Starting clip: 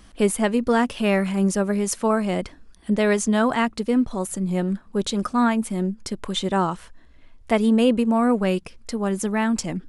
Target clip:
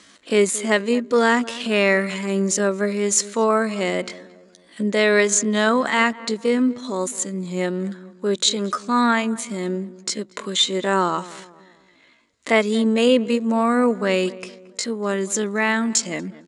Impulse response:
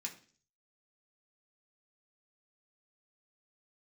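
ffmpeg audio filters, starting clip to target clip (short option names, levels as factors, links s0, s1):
-filter_complex "[0:a]highpass=290,equalizer=f=780:t=q:w=4:g=-8,equalizer=f=2000:t=q:w=4:g=5,equalizer=f=4000:t=q:w=4:g=7,equalizer=f=7000:t=q:w=4:g=9,lowpass=f=9200:w=0.5412,lowpass=f=9200:w=1.3066,asplit=2[s0][s1];[s1]adelay=132,lowpass=f=1300:p=1,volume=0.141,asplit=2[s2][s3];[s3]adelay=132,lowpass=f=1300:p=1,volume=0.45,asplit=2[s4][s5];[s5]adelay=132,lowpass=f=1300:p=1,volume=0.45,asplit=2[s6][s7];[s7]adelay=132,lowpass=f=1300:p=1,volume=0.45[s8];[s0][s2][s4][s6][s8]amix=inputs=5:normalize=0,atempo=0.6,volume=1.58"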